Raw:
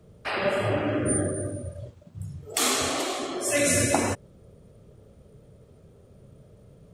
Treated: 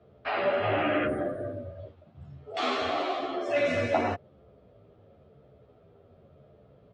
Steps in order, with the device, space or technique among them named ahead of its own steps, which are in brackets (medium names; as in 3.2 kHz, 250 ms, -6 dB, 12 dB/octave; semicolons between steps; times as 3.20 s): barber-pole flanger into a guitar amplifier (endless flanger 11.1 ms -0.93 Hz; saturation -19.5 dBFS, distortion -18 dB; cabinet simulation 80–3800 Hz, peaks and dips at 120 Hz -5 dB, 180 Hz -6 dB, 700 Hz +9 dB, 1.3 kHz +4 dB); 0.62–1.06 s: peaking EQ 2.5 kHz +4 dB -> +13.5 dB 1.9 oct